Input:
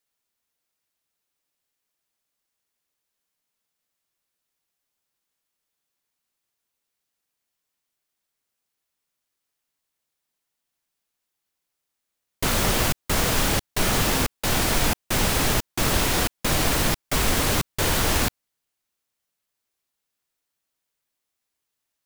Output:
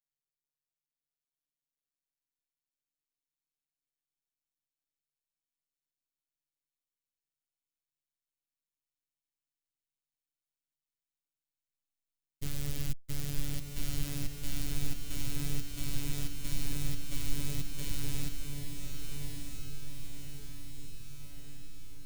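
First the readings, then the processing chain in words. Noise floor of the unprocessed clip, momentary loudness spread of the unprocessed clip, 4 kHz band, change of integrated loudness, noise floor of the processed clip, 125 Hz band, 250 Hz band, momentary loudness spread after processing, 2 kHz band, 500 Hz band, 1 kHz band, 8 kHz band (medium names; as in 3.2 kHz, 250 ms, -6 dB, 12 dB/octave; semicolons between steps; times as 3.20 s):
-82 dBFS, 3 LU, -17.5 dB, -17.0 dB, under -85 dBFS, -9.5 dB, -13.5 dB, 13 LU, -21.5 dB, -23.5 dB, -27.5 dB, -16.5 dB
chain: amplifier tone stack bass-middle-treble 10-0-1; robot voice 143 Hz; on a send: echo that smears into a reverb 1202 ms, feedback 59%, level -4.5 dB; on the sum: trim +4.5 dB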